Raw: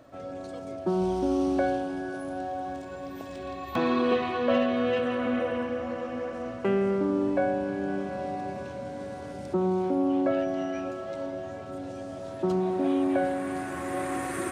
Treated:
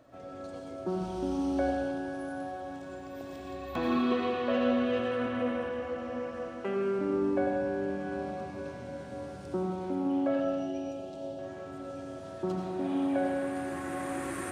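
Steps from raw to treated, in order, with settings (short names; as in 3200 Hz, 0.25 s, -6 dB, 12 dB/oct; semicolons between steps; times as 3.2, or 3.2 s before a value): 6.48–6.99 HPF 280 Hz 6 dB/oct; 10.4–11.39 band shelf 1500 Hz -16 dB 1.3 oct; reverb RT60 1.0 s, pre-delay 76 ms, DRR 1 dB; gain -6 dB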